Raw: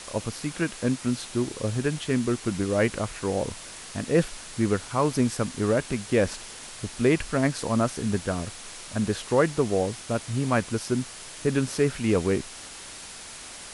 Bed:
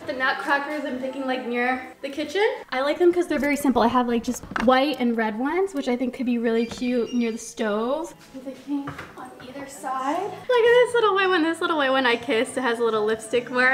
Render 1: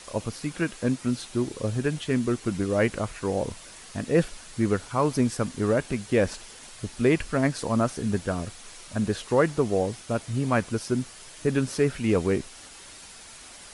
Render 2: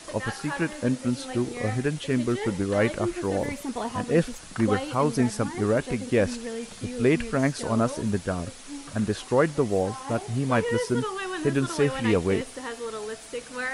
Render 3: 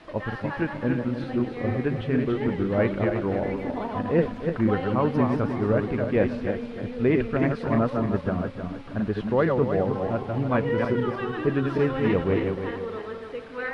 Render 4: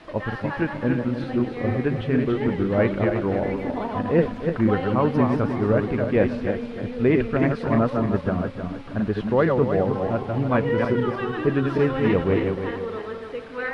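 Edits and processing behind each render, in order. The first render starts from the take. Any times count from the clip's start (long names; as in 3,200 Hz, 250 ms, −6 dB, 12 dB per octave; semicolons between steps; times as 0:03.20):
broadband denoise 6 dB, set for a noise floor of −42 dBFS
mix in bed −12 dB
feedback delay that plays each chunk backwards 155 ms, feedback 56%, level −3.5 dB; high-frequency loss of the air 380 metres
level +2.5 dB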